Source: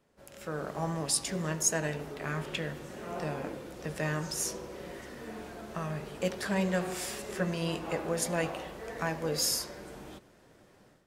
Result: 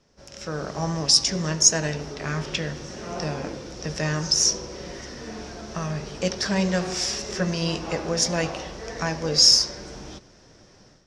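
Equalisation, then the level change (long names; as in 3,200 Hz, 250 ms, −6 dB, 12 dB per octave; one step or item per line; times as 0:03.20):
low-pass with resonance 5,600 Hz, resonance Q 6.8
low-shelf EQ 110 Hz +9 dB
+4.5 dB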